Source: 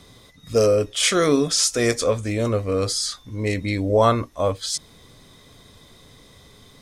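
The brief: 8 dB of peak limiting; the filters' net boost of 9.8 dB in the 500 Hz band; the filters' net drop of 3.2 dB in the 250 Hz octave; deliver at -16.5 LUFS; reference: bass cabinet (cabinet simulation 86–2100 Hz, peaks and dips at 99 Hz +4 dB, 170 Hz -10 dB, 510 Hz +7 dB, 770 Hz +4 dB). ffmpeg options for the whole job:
-af "equalizer=f=250:t=o:g=-6.5,equalizer=f=500:t=o:g=6.5,alimiter=limit=0.316:level=0:latency=1,highpass=f=86:w=0.5412,highpass=f=86:w=1.3066,equalizer=f=99:t=q:w=4:g=4,equalizer=f=170:t=q:w=4:g=-10,equalizer=f=510:t=q:w=4:g=7,equalizer=f=770:t=q:w=4:g=4,lowpass=f=2100:w=0.5412,lowpass=f=2100:w=1.3066,volume=1.06"

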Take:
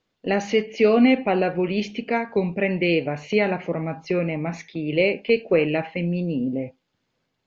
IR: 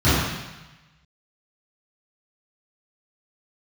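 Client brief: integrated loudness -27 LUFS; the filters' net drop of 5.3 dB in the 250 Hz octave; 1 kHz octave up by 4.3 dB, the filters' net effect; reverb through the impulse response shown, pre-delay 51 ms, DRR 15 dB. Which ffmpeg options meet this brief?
-filter_complex "[0:a]equalizer=f=250:t=o:g=-7.5,equalizer=f=1000:t=o:g=7,asplit=2[s0][s1];[1:a]atrim=start_sample=2205,adelay=51[s2];[s1][s2]afir=irnorm=-1:irlink=0,volume=0.0141[s3];[s0][s3]amix=inputs=2:normalize=0,volume=0.668"

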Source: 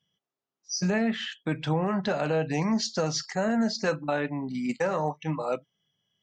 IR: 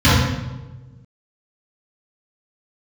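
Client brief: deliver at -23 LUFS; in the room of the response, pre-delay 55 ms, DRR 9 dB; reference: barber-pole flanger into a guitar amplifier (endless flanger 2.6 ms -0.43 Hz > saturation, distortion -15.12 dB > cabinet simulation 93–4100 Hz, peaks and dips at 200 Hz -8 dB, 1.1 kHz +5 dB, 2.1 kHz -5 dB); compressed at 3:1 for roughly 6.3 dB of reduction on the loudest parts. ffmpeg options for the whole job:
-filter_complex "[0:a]acompressor=threshold=0.0316:ratio=3,asplit=2[s0][s1];[1:a]atrim=start_sample=2205,adelay=55[s2];[s1][s2]afir=irnorm=-1:irlink=0,volume=0.0168[s3];[s0][s3]amix=inputs=2:normalize=0,asplit=2[s4][s5];[s5]adelay=2.6,afreqshift=-0.43[s6];[s4][s6]amix=inputs=2:normalize=1,asoftclip=threshold=0.0355,highpass=93,equalizer=f=200:t=q:w=4:g=-8,equalizer=f=1100:t=q:w=4:g=5,equalizer=f=2100:t=q:w=4:g=-5,lowpass=f=4100:w=0.5412,lowpass=f=4100:w=1.3066,volume=6.31"

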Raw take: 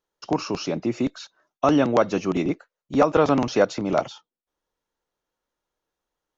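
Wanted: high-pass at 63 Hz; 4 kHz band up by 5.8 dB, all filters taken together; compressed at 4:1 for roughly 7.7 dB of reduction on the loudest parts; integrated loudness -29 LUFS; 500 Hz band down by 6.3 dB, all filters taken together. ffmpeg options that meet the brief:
-af "highpass=63,equalizer=f=500:t=o:g=-8,equalizer=f=4000:t=o:g=8,acompressor=threshold=0.0501:ratio=4,volume=1.33"

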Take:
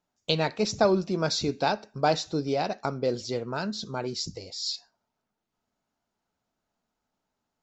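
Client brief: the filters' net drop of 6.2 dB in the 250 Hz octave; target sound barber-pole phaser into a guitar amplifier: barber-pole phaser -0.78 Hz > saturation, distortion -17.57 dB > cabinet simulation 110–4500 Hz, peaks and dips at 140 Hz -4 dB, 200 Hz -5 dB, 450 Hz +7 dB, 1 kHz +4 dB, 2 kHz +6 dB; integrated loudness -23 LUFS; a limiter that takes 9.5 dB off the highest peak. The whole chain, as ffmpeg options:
-filter_complex "[0:a]equalizer=f=250:t=o:g=-8,alimiter=limit=0.126:level=0:latency=1,asplit=2[s0][s1];[s1]afreqshift=-0.78[s2];[s0][s2]amix=inputs=2:normalize=1,asoftclip=threshold=0.0631,highpass=110,equalizer=f=140:t=q:w=4:g=-4,equalizer=f=200:t=q:w=4:g=-5,equalizer=f=450:t=q:w=4:g=7,equalizer=f=1000:t=q:w=4:g=4,equalizer=f=2000:t=q:w=4:g=6,lowpass=f=4500:w=0.5412,lowpass=f=4500:w=1.3066,volume=3.98"

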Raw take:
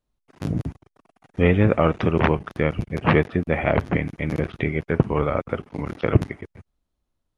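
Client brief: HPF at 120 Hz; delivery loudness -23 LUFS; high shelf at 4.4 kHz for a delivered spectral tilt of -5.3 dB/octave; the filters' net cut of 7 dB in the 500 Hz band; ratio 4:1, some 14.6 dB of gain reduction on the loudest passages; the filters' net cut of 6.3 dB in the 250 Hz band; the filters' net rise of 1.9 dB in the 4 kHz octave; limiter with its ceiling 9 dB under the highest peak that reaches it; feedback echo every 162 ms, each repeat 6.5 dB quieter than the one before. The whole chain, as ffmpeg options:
-af "highpass=120,equalizer=f=250:t=o:g=-7,equalizer=f=500:t=o:g=-6.5,equalizer=f=4000:t=o:g=5,highshelf=f=4400:g=-4,acompressor=threshold=0.0178:ratio=4,alimiter=level_in=1.12:limit=0.0631:level=0:latency=1,volume=0.891,aecho=1:1:162|324|486|648|810|972:0.473|0.222|0.105|0.0491|0.0231|0.0109,volume=7.08"

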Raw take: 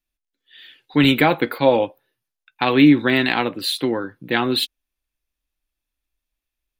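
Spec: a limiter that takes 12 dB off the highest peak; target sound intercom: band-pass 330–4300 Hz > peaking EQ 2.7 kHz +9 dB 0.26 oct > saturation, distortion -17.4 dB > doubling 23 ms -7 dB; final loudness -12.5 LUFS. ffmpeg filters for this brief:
-filter_complex "[0:a]alimiter=limit=0.224:level=0:latency=1,highpass=330,lowpass=4300,equalizer=f=2700:t=o:w=0.26:g=9,asoftclip=threshold=0.133,asplit=2[s0][s1];[s1]adelay=23,volume=0.447[s2];[s0][s2]amix=inputs=2:normalize=0,volume=4.73"

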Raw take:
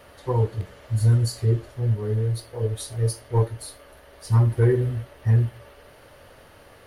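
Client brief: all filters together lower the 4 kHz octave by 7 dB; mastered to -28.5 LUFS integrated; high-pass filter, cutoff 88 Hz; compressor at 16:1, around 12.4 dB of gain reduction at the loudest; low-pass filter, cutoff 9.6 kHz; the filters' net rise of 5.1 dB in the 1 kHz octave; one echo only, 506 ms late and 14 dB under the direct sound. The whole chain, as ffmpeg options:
-af "highpass=88,lowpass=9600,equalizer=f=1000:t=o:g=6,equalizer=f=4000:t=o:g=-8.5,acompressor=threshold=0.0447:ratio=16,aecho=1:1:506:0.2,volume=1.78"

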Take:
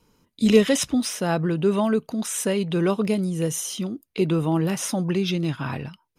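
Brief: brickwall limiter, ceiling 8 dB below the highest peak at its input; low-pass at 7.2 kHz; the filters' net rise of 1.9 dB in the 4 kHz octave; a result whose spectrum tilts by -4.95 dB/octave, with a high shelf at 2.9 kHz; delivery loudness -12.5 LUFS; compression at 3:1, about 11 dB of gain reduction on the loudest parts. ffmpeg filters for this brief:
-af "lowpass=7200,highshelf=f=2900:g=-5,equalizer=f=4000:t=o:g=7,acompressor=threshold=0.0562:ratio=3,volume=8.41,alimiter=limit=0.596:level=0:latency=1"

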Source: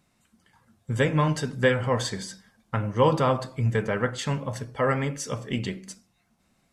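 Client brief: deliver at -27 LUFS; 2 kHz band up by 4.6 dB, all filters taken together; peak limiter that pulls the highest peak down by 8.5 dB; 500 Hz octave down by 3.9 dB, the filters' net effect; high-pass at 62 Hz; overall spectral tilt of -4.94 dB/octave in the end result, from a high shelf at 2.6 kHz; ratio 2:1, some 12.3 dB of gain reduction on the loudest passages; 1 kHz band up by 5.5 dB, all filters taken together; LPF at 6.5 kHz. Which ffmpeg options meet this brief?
-af "highpass=62,lowpass=6500,equalizer=f=500:t=o:g=-6,equalizer=f=1000:t=o:g=7,equalizer=f=2000:t=o:g=6,highshelf=f=2600:g=-6,acompressor=threshold=0.0126:ratio=2,volume=3.35,alimiter=limit=0.188:level=0:latency=1"

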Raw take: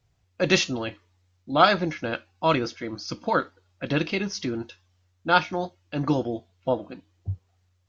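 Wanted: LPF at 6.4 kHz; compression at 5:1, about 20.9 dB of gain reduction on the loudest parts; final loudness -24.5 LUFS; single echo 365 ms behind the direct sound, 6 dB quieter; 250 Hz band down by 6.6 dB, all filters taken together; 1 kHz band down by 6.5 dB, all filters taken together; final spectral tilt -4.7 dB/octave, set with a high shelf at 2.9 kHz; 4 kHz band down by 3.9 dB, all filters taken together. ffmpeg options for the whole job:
-af "lowpass=6400,equalizer=f=250:t=o:g=-9,equalizer=f=1000:t=o:g=-9,highshelf=f=2900:g=3.5,equalizer=f=4000:t=o:g=-6.5,acompressor=threshold=0.00708:ratio=5,aecho=1:1:365:0.501,volume=11.9"

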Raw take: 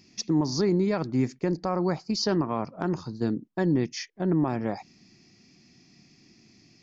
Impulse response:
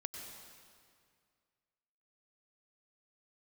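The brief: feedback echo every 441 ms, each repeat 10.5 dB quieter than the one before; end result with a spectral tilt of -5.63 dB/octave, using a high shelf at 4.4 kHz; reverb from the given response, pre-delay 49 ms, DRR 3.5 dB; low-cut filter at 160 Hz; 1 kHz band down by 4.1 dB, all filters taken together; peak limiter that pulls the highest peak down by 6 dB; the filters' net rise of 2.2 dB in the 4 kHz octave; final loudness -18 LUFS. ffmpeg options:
-filter_complex "[0:a]highpass=160,equalizer=f=1000:t=o:g=-5.5,equalizer=f=4000:t=o:g=7.5,highshelf=f=4400:g=-6.5,alimiter=limit=0.0944:level=0:latency=1,aecho=1:1:441|882|1323:0.299|0.0896|0.0269,asplit=2[s0][s1];[1:a]atrim=start_sample=2205,adelay=49[s2];[s1][s2]afir=irnorm=-1:irlink=0,volume=0.794[s3];[s0][s3]amix=inputs=2:normalize=0,volume=3.55"

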